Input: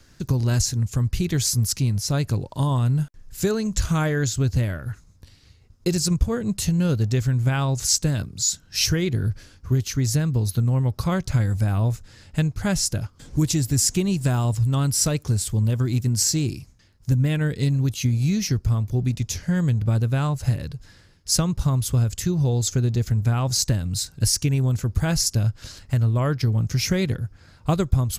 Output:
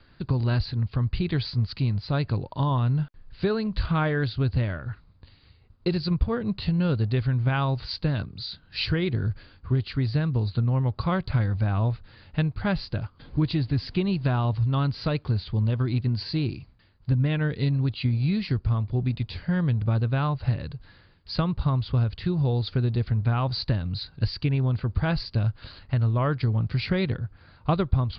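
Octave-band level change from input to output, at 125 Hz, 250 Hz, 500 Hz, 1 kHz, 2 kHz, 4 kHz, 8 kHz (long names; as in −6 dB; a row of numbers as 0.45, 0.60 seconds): −3.0 dB, −3.0 dB, −2.0 dB, +0.5 dB, −1.0 dB, −6.5 dB, below −40 dB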